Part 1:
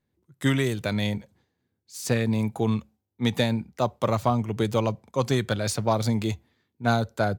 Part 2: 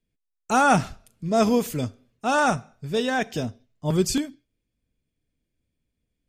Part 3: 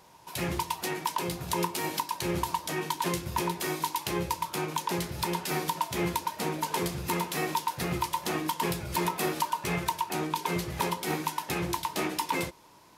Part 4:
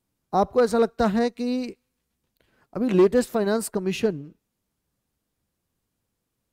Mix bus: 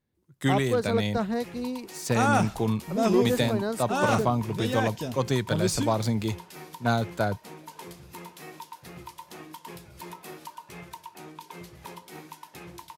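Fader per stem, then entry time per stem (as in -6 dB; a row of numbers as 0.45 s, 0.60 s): -2.0 dB, -5.5 dB, -13.0 dB, -6.5 dB; 0.00 s, 1.65 s, 1.05 s, 0.15 s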